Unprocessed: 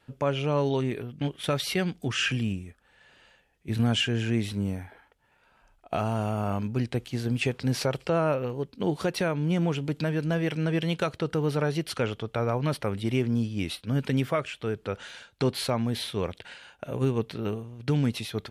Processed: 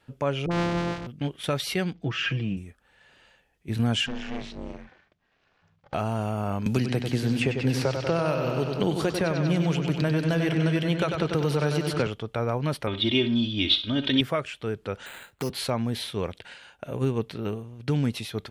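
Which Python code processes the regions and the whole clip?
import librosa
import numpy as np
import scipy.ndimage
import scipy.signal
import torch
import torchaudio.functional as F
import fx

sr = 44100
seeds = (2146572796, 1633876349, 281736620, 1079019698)

y = fx.chain(x, sr, fx.sample_sort(block=256),
    fx.air_absorb(metres=130.0),
    fx.dispersion(late='highs', ms=53.0, hz=660.0), at=(0.46, 1.07))
y = fx.chain(y, sr, fx.air_absorb(metres=200.0),
    fx.comb(ms=6.1, depth=0.69), at=(1.93, 2.57))
y = fx.chain(y, sr, fx.lower_of_two(delay_ms=1.8),
    fx.lowpass(hz=6100.0, slope=24),
    fx.ring_mod(carrier_hz=130.0), at=(4.06, 5.94))
y = fx.chain(y, sr, fx.echo_bbd(ms=95, stages=4096, feedback_pct=65, wet_db=-6.5),
    fx.band_squash(depth_pct=100), at=(6.66, 12.07))
y = fx.chain(y, sr, fx.lowpass_res(hz=3500.0, q=12.0),
    fx.comb(ms=3.2, depth=0.74),
    fx.room_flutter(wall_m=11.0, rt60_s=0.32), at=(12.87, 14.21))
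y = fx.chain(y, sr, fx.resample_bad(factor=8, down='none', up='hold'),
    fx.band_squash(depth_pct=40), at=(15.06, 15.5))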